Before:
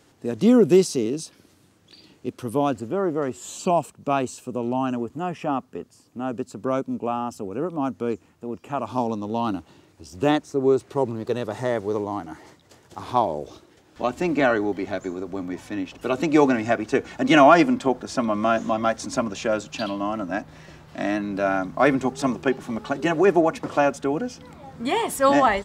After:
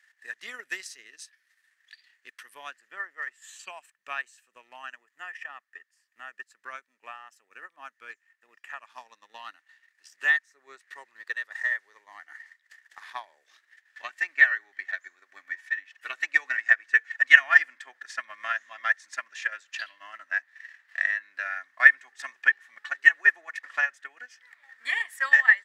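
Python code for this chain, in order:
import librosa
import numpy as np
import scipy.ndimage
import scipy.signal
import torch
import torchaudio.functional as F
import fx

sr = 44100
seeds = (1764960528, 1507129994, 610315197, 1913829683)

y = fx.highpass_res(x, sr, hz=1800.0, q=15.0)
y = fx.transient(y, sr, attack_db=7, sustain_db=-7)
y = F.gain(torch.from_numpy(y), -12.0).numpy()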